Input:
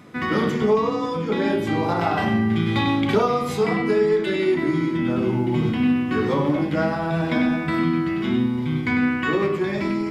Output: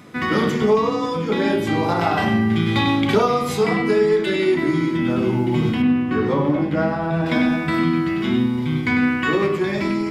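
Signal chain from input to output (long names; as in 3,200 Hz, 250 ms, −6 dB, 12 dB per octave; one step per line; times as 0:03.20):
high-shelf EQ 3,100 Hz +4 dB, from 0:05.82 −8.5 dB, from 0:07.26 +4 dB
level +2 dB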